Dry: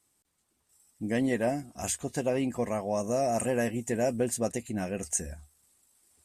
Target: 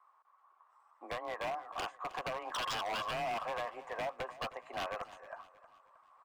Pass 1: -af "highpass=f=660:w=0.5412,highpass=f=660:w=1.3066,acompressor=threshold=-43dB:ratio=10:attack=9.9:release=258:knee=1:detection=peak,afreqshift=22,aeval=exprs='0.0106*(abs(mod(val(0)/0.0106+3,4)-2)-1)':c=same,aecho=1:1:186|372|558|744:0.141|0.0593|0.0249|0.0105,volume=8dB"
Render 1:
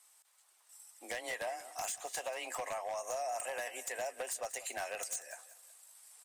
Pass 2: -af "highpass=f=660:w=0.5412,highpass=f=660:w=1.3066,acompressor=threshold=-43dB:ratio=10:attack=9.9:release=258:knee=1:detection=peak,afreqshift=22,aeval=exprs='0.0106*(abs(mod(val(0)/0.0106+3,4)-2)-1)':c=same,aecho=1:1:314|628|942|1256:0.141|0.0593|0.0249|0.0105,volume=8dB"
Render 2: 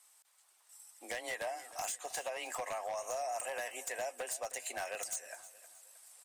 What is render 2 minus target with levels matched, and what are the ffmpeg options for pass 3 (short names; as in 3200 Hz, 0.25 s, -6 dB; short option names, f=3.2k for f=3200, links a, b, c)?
1000 Hz band -3.0 dB
-af "highpass=f=660:w=0.5412,highpass=f=660:w=1.3066,acompressor=threshold=-43dB:ratio=10:attack=9.9:release=258:knee=1:detection=peak,lowpass=f=1.1k:t=q:w=9.9,afreqshift=22,aeval=exprs='0.0106*(abs(mod(val(0)/0.0106+3,4)-2)-1)':c=same,aecho=1:1:314|628|942|1256:0.141|0.0593|0.0249|0.0105,volume=8dB"